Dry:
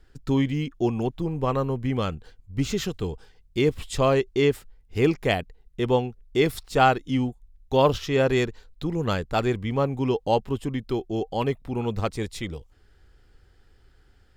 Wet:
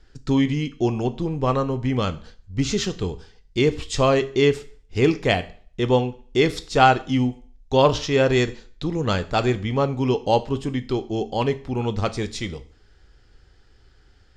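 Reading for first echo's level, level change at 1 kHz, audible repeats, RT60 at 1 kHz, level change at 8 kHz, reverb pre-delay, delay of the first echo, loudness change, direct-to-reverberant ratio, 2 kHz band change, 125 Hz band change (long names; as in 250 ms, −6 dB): no echo audible, +3.5 dB, no echo audible, 0.45 s, +5.0 dB, 13 ms, no echo audible, +3.0 dB, 11.0 dB, +4.0 dB, +3.0 dB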